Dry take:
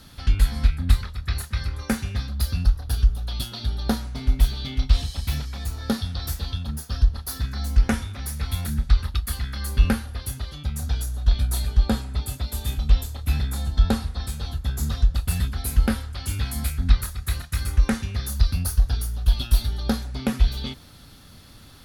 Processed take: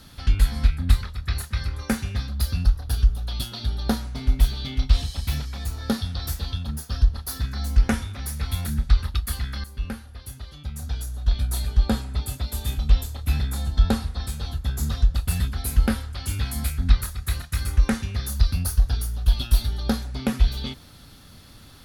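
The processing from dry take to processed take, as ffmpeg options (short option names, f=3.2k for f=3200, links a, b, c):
-filter_complex "[0:a]asplit=2[a][b];[a]atrim=end=9.64,asetpts=PTS-STARTPTS,afade=t=out:st=9.636:d=0.004:c=hsin:silence=0.199526[c];[b]atrim=start=9.64,asetpts=PTS-STARTPTS,afade=t=in:d=2.34:silence=0.199526[d];[c][d]concat=n=2:v=0:a=1"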